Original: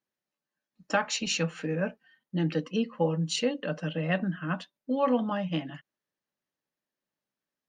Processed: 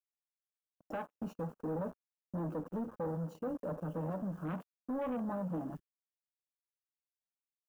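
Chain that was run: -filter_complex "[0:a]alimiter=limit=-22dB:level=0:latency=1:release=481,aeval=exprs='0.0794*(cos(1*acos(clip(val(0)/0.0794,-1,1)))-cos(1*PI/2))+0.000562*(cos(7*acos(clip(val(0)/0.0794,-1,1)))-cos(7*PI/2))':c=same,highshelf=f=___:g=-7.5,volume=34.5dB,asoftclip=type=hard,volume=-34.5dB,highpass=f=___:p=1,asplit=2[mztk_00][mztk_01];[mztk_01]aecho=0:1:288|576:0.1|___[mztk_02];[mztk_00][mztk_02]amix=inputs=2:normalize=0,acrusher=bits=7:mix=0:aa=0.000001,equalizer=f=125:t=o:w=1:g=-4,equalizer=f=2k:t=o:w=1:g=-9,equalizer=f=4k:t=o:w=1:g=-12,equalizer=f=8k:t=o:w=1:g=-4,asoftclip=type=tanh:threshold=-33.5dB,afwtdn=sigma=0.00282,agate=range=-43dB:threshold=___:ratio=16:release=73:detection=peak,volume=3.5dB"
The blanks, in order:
2.8k, 57, 0.029, -57dB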